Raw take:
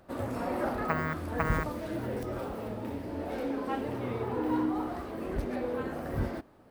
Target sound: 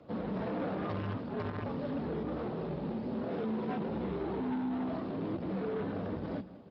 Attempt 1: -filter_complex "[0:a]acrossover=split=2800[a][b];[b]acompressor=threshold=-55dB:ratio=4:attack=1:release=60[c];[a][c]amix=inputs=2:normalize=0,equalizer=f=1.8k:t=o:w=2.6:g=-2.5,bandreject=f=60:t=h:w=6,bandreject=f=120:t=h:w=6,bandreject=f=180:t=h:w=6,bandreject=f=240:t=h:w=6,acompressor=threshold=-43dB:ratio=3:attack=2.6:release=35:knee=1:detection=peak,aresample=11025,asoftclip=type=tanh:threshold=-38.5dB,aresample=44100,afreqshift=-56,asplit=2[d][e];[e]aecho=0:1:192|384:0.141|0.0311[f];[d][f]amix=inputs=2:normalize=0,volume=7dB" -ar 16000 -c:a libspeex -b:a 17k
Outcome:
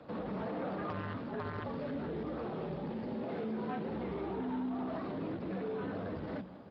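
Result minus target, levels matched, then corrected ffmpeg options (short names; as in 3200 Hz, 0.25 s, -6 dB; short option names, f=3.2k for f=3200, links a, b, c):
compressor: peak gain reduction +6 dB; 2000 Hz band +2.5 dB
-filter_complex "[0:a]acrossover=split=2800[a][b];[b]acompressor=threshold=-55dB:ratio=4:attack=1:release=60[c];[a][c]amix=inputs=2:normalize=0,equalizer=f=1.8k:t=o:w=2.6:g=-9,bandreject=f=60:t=h:w=6,bandreject=f=120:t=h:w=6,bandreject=f=180:t=h:w=6,bandreject=f=240:t=h:w=6,acompressor=threshold=-33.5dB:ratio=3:attack=2.6:release=35:knee=1:detection=peak,aresample=11025,asoftclip=type=tanh:threshold=-38.5dB,aresample=44100,afreqshift=-56,asplit=2[d][e];[e]aecho=0:1:192|384:0.141|0.0311[f];[d][f]amix=inputs=2:normalize=0,volume=7dB" -ar 16000 -c:a libspeex -b:a 17k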